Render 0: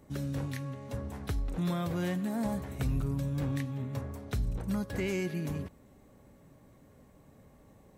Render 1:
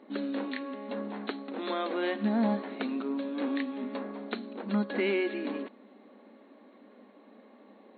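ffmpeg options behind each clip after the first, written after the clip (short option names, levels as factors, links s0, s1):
-af "afftfilt=real='re*between(b*sr/4096,200,4400)':imag='im*between(b*sr/4096,200,4400)':win_size=4096:overlap=0.75,volume=2"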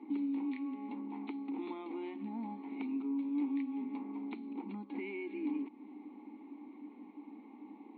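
-filter_complex "[0:a]acompressor=threshold=0.00631:ratio=3,asplit=3[s0][s1][s2];[s0]bandpass=f=300:t=q:w=8,volume=1[s3];[s1]bandpass=f=870:t=q:w=8,volume=0.501[s4];[s2]bandpass=f=2240:t=q:w=8,volume=0.355[s5];[s3][s4][s5]amix=inputs=3:normalize=0,volume=4.22"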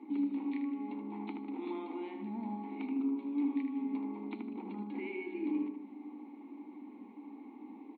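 -filter_complex "[0:a]asplit=2[s0][s1];[s1]adelay=77,lowpass=f=1700:p=1,volume=0.708,asplit=2[s2][s3];[s3]adelay=77,lowpass=f=1700:p=1,volume=0.54,asplit=2[s4][s5];[s5]adelay=77,lowpass=f=1700:p=1,volume=0.54,asplit=2[s6][s7];[s7]adelay=77,lowpass=f=1700:p=1,volume=0.54,asplit=2[s8][s9];[s9]adelay=77,lowpass=f=1700:p=1,volume=0.54,asplit=2[s10][s11];[s11]adelay=77,lowpass=f=1700:p=1,volume=0.54,asplit=2[s12][s13];[s13]adelay=77,lowpass=f=1700:p=1,volume=0.54[s14];[s0][s2][s4][s6][s8][s10][s12][s14]amix=inputs=8:normalize=0"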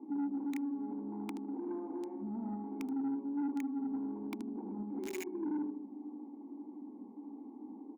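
-filter_complex "[0:a]acrossover=split=960[s0][s1];[s0]asoftclip=type=tanh:threshold=0.0237[s2];[s1]acrusher=bits=6:mix=0:aa=0.000001[s3];[s2][s3]amix=inputs=2:normalize=0,volume=1.19"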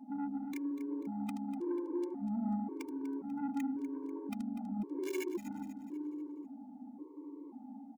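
-filter_complex "[0:a]asplit=2[s0][s1];[s1]aecho=0:1:245|490|735|980|1225:0.251|0.113|0.0509|0.0229|0.0103[s2];[s0][s2]amix=inputs=2:normalize=0,afftfilt=real='re*gt(sin(2*PI*0.93*pts/sr)*(1-2*mod(floor(b*sr/1024/300),2)),0)':imag='im*gt(sin(2*PI*0.93*pts/sr)*(1-2*mod(floor(b*sr/1024/300),2)),0)':win_size=1024:overlap=0.75,volume=1.58"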